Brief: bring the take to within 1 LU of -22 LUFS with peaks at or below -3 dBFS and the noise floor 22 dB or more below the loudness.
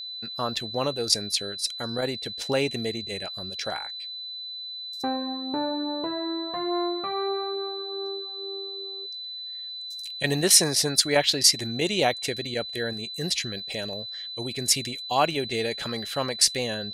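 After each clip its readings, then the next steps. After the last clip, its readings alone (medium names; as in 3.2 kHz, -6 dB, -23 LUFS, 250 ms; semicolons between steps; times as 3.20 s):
steady tone 4 kHz; tone level -34 dBFS; loudness -26.0 LUFS; peak level -3.5 dBFS; loudness target -22.0 LUFS
-> band-stop 4 kHz, Q 30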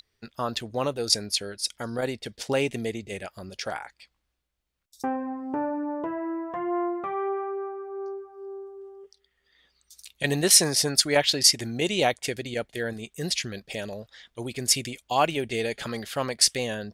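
steady tone not found; loudness -26.0 LUFS; peak level -3.5 dBFS; loudness target -22.0 LUFS
-> trim +4 dB; peak limiter -3 dBFS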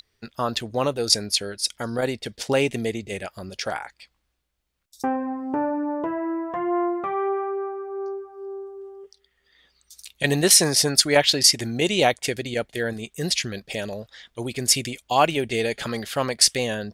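loudness -22.5 LUFS; peak level -3.0 dBFS; noise floor -72 dBFS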